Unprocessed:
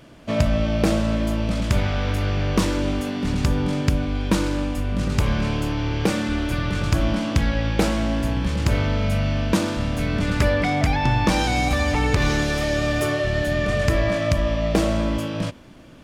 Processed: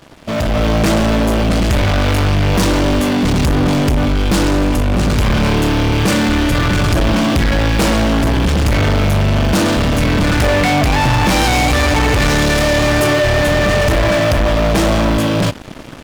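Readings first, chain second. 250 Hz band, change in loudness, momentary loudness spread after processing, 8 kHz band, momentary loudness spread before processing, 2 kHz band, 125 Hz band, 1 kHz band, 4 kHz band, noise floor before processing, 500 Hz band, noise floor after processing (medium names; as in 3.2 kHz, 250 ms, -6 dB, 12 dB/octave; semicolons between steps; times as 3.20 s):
+8.0 dB, +8.5 dB, 2 LU, +10.5 dB, 4 LU, +9.5 dB, +7.5 dB, +9.5 dB, +10.5 dB, -37 dBFS, +8.5 dB, -22 dBFS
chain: waveshaping leveller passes 5; level rider; trim -8.5 dB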